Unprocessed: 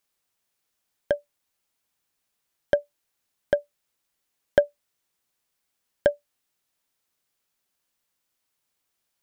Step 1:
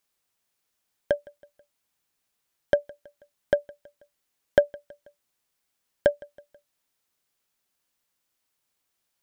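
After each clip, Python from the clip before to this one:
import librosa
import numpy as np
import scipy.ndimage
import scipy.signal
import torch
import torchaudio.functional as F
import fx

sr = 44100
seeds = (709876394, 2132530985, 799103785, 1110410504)

y = fx.echo_feedback(x, sr, ms=162, feedback_pct=50, wet_db=-24)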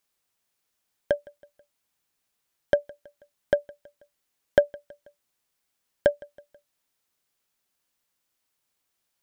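y = x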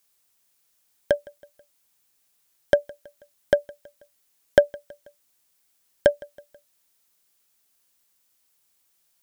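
y = fx.high_shelf(x, sr, hz=4900.0, db=9.0)
y = y * 10.0 ** (3.0 / 20.0)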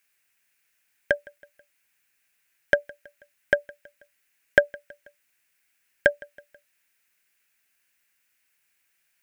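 y = fx.band_shelf(x, sr, hz=2000.0, db=13.0, octaves=1.1)
y = y * 10.0 ** (-4.5 / 20.0)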